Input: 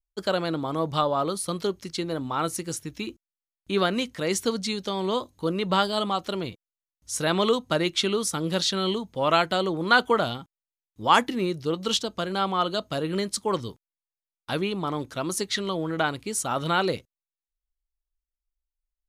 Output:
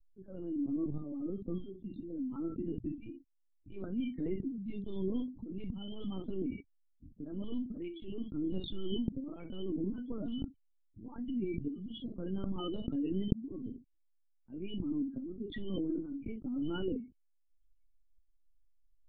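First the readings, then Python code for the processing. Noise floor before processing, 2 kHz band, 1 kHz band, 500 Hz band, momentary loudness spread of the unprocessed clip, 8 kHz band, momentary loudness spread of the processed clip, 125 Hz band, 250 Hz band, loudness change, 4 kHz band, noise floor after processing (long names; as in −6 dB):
below −85 dBFS, −29.5 dB, −31.0 dB, −16.0 dB, 10 LU, below −40 dB, 10 LU, −9.5 dB, −5.5 dB, −13.0 dB, −22.0 dB, −72 dBFS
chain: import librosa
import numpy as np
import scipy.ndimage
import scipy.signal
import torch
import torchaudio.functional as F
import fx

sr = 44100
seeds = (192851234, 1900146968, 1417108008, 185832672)

p1 = fx.notch(x, sr, hz=750.0, q=13.0)
p2 = fx.auto_swell(p1, sr, attack_ms=548.0)
p3 = fx.spec_topn(p2, sr, count=16)
p4 = fx.formant_cascade(p3, sr, vowel='i')
p5 = p4 + fx.room_early_taps(p4, sr, ms=(21, 53), db=(-10.0, -11.0), dry=0)
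p6 = fx.lpc_vocoder(p5, sr, seeds[0], excitation='pitch_kept', order=10)
p7 = fx.env_flatten(p6, sr, amount_pct=50)
y = p7 * 10.0 ** (-5.0 / 20.0)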